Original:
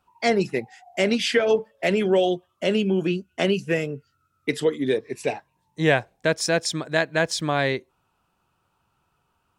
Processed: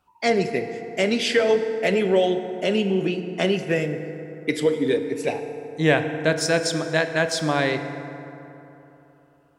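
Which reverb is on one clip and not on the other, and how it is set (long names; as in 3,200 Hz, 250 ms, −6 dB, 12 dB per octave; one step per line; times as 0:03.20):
feedback delay network reverb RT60 3.3 s, high-frequency decay 0.45×, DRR 7 dB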